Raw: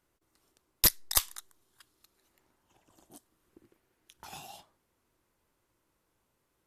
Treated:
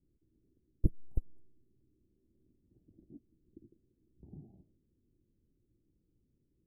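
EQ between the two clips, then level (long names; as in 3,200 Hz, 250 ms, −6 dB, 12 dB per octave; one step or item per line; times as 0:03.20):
inverse Chebyshev band-stop filter 1,400–4,400 Hz, stop band 80 dB
head-to-tape spacing loss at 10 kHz 41 dB
+7.0 dB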